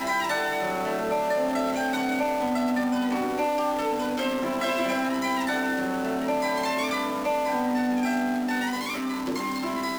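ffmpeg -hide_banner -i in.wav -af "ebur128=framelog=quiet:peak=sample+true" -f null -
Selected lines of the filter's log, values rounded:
Integrated loudness:
  I:         -26.3 LUFS
  Threshold: -36.3 LUFS
Loudness range:
  LRA:         0.5 LU
  Threshold: -46.1 LUFS
  LRA low:   -26.4 LUFS
  LRA high:  -25.8 LUFS
Sample peak:
  Peak:      -15.3 dBFS
True peak:
  Peak:      -15.3 dBFS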